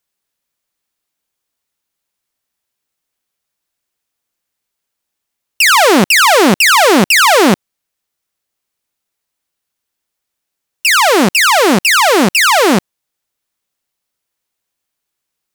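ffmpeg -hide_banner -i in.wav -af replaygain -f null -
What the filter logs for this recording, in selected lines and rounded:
track_gain = -8.6 dB
track_peak = 0.495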